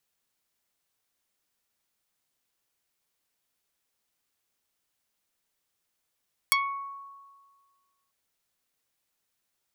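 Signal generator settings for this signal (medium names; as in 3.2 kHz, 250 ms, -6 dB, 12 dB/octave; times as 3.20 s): plucked string C#6, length 1.59 s, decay 1.67 s, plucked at 0.28, dark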